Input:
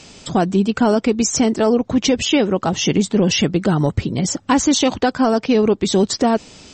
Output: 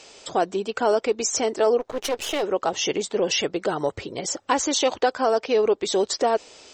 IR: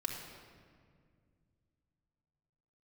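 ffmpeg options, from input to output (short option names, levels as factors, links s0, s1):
-filter_complex "[0:a]asplit=3[s0][s1][s2];[s0]afade=t=out:st=1.79:d=0.02[s3];[s1]aeval=exprs='max(val(0),0)':c=same,afade=t=in:st=1.79:d=0.02,afade=t=out:st=2.42:d=0.02[s4];[s2]afade=t=in:st=2.42:d=0.02[s5];[s3][s4][s5]amix=inputs=3:normalize=0,lowshelf=f=300:t=q:w=1.5:g=-13.5,volume=0.596"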